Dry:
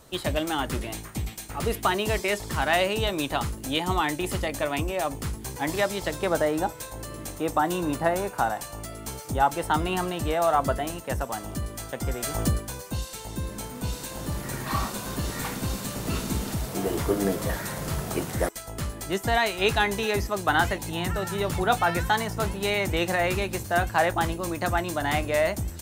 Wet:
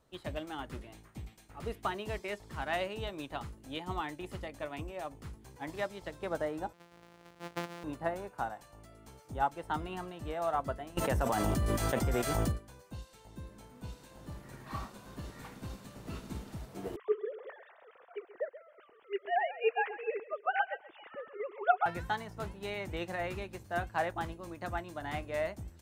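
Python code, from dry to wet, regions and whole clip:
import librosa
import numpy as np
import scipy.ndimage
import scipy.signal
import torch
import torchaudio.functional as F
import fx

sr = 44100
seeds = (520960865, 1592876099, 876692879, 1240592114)

y = fx.chain(x, sr, fx.sample_sort(block=256),
    fx.highpass(hz=340.0, slope=6), at=(6.73, 7.84))
y = fx.chain(y, sr, fx.high_shelf(hz=9900.0, db=4.5),
    fx.env_flatten(amount_pct=100), at=(10.97, 12.52))
y = fx.chain(y, sr, fx.sine_speech(),
    fx.echo_feedback(ms=131, feedback_pct=24, wet_db=-10.0), at=(16.96, 21.86))
y = fx.high_shelf(y, sr, hz=5000.0, db=-10.5)
y = fx.upward_expand(y, sr, threshold_db=-34.0, expansion=1.5)
y = F.gain(torch.from_numpy(y), -6.5).numpy()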